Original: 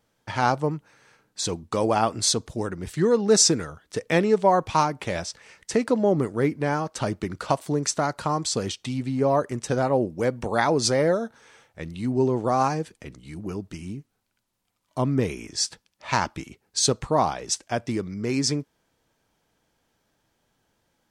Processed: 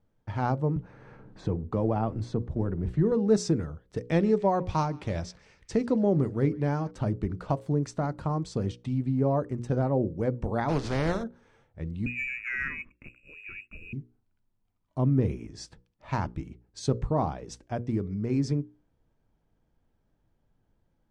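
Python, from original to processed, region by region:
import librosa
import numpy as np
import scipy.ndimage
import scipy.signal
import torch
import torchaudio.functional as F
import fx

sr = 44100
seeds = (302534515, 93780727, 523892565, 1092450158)

y = fx.chain(x, sr, fx.law_mismatch(coded='mu'),
    fx.lowpass(hz=1500.0, slope=6),
    fx.band_squash(depth_pct=40), at=(0.76, 3.12))
y = fx.chain(y, sr, fx.peak_eq(hz=5200.0, db=8.0, octaves=1.7),
    fx.echo_banded(ms=143, feedback_pct=65, hz=2300.0, wet_db=-21.0), at=(3.97, 6.91))
y = fx.spec_flatten(y, sr, power=0.38, at=(10.68, 11.22), fade=0.02)
y = fx.lowpass(y, sr, hz=5800.0, slope=12, at=(10.68, 11.22), fade=0.02)
y = fx.chain(y, sr, fx.freq_invert(carrier_hz=2700),
    fx.leveller(passes=1),
    fx.fixed_phaser(hz=1900.0, stages=4), at=(12.06, 13.93))
y = fx.tilt_eq(y, sr, slope=-4.0)
y = fx.hum_notches(y, sr, base_hz=60, count=9)
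y = F.gain(torch.from_numpy(y), -9.0).numpy()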